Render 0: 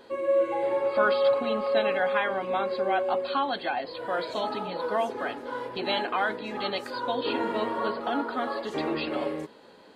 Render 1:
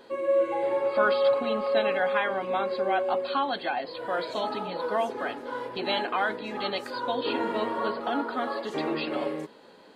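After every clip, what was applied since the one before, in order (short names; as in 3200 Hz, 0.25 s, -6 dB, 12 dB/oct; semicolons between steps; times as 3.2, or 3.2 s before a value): bell 75 Hz -14.5 dB 0.4 oct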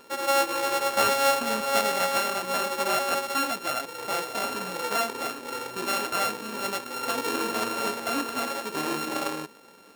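sample sorter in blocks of 32 samples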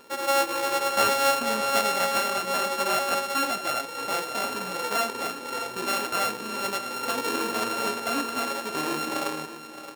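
echo 0.619 s -12.5 dB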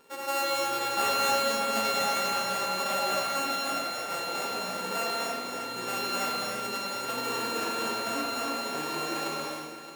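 non-linear reverb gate 0.39 s flat, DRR -4.5 dB; gain -8.5 dB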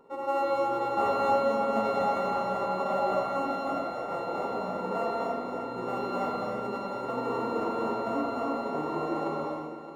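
polynomial smoothing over 65 samples; gain +4.5 dB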